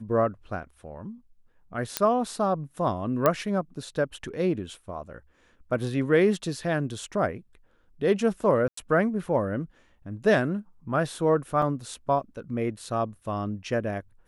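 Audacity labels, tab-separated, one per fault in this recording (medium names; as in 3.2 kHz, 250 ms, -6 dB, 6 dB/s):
1.970000	1.970000	pop -6 dBFS
3.260000	3.260000	pop -8 dBFS
8.680000	8.770000	dropout 94 ms
11.620000	11.620000	dropout 3.3 ms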